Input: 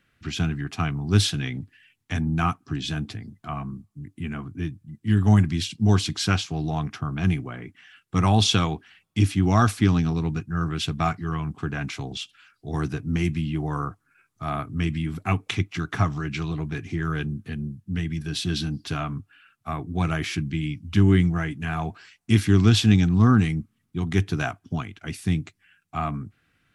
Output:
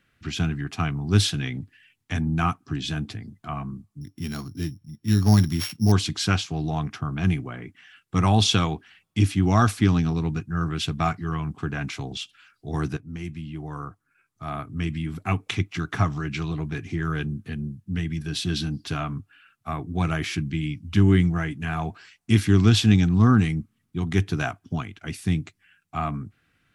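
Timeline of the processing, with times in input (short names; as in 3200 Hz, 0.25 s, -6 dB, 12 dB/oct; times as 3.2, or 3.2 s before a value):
4.01–5.92 sample sorter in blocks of 8 samples
12.97–15.72 fade in, from -12 dB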